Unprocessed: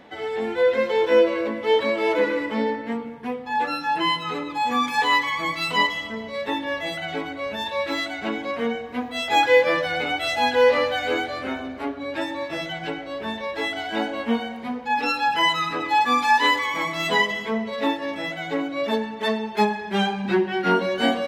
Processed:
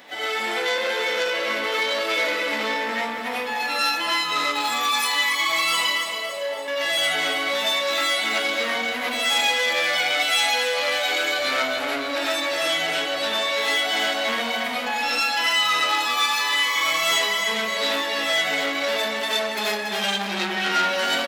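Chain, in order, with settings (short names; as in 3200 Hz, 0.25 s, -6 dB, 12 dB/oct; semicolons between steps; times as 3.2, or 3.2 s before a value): tilt +4 dB/oct; compressor 6:1, threshold -27 dBFS, peak gain reduction 14.5 dB; 5.93–6.68 band-pass 590 Hz, Q 2.8; feedback echo 0.282 s, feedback 56%, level -8 dB; reverb RT60 0.35 s, pre-delay 55 ms, DRR -7 dB; core saturation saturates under 2900 Hz; gain +1.5 dB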